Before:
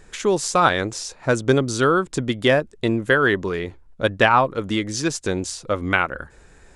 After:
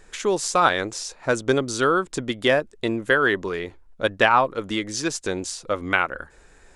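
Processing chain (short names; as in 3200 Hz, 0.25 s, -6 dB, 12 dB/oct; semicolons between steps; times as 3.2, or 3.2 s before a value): bell 110 Hz -7.5 dB 2.2 oct; gain -1 dB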